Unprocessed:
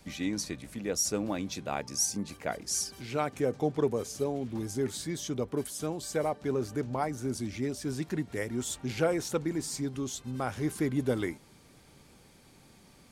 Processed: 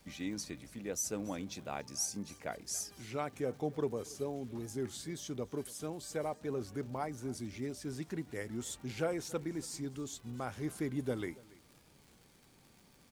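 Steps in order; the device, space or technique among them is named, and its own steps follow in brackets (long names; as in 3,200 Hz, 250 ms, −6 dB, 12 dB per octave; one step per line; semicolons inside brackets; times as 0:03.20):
warped LP (wow of a warped record 33 1/3 rpm, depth 100 cents; surface crackle 130 per second −43 dBFS; white noise bed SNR 39 dB)
single-tap delay 281 ms −22 dB
level −7 dB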